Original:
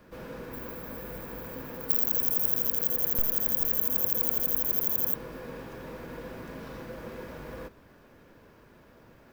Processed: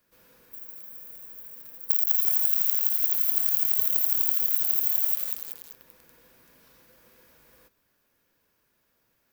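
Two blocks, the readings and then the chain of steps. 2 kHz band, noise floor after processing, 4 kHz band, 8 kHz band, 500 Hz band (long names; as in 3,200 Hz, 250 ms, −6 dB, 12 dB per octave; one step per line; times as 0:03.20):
can't be measured, −72 dBFS, +3.5 dB, +3.5 dB, below −15 dB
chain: first-order pre-emphasis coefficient 0.9
feedback echo at a low word length 192 ms, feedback 55%, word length 5 bits, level −3.5 dB
level −3 dB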